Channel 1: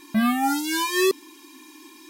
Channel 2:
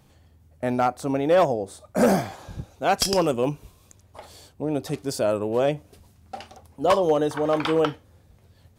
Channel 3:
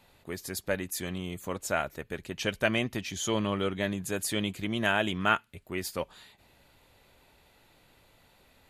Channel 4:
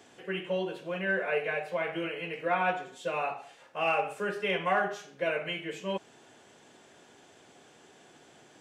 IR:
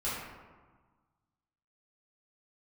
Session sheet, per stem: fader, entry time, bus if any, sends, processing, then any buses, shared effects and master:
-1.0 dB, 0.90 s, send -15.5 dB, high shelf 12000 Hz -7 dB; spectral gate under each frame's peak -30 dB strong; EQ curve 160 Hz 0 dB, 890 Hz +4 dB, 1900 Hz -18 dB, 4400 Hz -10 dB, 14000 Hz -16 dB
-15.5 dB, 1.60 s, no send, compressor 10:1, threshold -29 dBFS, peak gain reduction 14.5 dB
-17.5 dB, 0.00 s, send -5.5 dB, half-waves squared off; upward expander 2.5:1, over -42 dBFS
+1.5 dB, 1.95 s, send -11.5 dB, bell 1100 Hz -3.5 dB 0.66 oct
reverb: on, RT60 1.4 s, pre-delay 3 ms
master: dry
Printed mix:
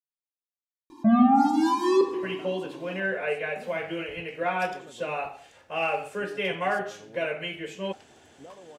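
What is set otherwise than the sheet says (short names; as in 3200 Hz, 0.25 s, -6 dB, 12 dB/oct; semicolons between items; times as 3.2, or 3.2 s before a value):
stem 1: send -15.5 dB -> -8 dB; stem 3: muted; stem 4: send off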